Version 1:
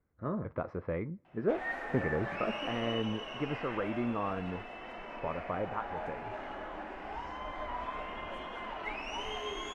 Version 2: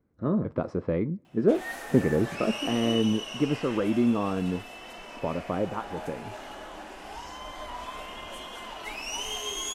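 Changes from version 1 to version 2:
speech: add parametric band 250 Hz +11.5 dB 2.5 octaves
master: remove drawn EQ curve 2,100 Hz 0 dB, 3,100 Hz −9 dB, 11,000 Hz −28 dB

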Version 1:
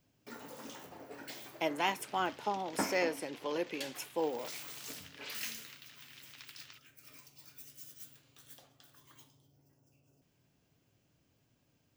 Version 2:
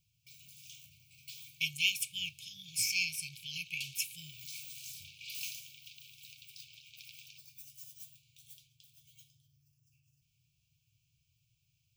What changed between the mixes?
speech +9.0 dB
second sound: entry +0.60 s
master: add linear-phase brick-wall band-stop 160–2,200 Hz

